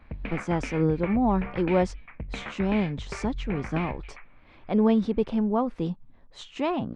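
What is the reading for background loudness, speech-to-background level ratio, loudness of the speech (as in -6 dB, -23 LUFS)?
-38.0 LUFS, 11.0 dB, -27.0 LUFS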